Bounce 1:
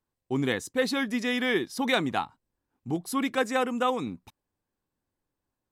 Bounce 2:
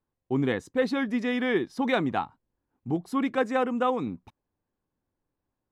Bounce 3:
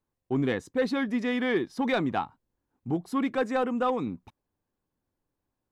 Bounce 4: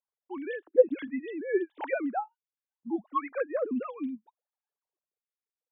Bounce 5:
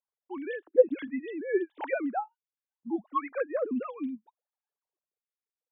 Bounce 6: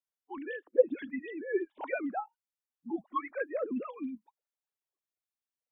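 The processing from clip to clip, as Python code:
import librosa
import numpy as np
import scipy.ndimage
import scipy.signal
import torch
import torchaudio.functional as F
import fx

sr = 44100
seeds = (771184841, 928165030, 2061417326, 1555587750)

y1 = fx.lowpass(x, sr, hz=1400.0, slope=6)
y1 = y1 * librosa.db_to_amplitude(2.0)
y2 = 10.0 ** (-15.5 / 20.0) * np.tanh(y1 / 10.0 ** (-15.5 / 20.0))
y3 = fx.sine_speech(y2, sr)
y3 = fx.stagger_phaser(y3, sr, hz=0.7)
y4 = y3
y5 = fx.spec_quant(y4, sr, step_db=30)
y5 = y5 * librosa.db_to_amplitude(-3.0)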